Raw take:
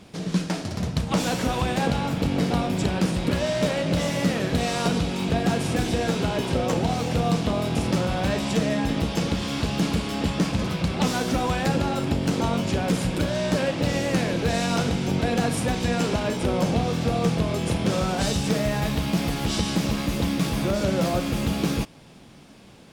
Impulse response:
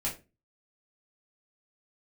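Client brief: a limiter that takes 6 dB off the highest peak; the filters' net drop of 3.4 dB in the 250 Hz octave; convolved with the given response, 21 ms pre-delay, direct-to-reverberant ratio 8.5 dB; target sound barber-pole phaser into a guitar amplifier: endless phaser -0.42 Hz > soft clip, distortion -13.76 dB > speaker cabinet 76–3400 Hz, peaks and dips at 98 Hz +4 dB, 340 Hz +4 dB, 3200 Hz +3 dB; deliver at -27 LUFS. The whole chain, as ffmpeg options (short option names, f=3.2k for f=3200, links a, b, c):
-filter_complex "[0:a]equalizer=f=250:t=o:g=-6,alimiter=limit=-18.5dB:level=0:latency=1,asplit=2[a][b];[1:a]atrim=start_sample=2205,adelay=21[c];[b][c]afir=irnorm=-1:irlink=0,volume=-13dB[d];[a][d]amix=inputs=2:normalize=0,asplit=2[e][f];[f]afreqshift=-0.42[g];[e][g]amix=inputs=2:normalize=1,asoftclip=threshold=-27dB,highpass=76,equalizer=f=98:t=q:w=4:g=4,equalizer=f=340:t=q:w=4:g=4,equalizer=f=3.2k:t=q:w=4:g=3,lowpass=f=3.4k:w=0.5412,lowpass=f=3.4k:w=1.3066,volume=6dB"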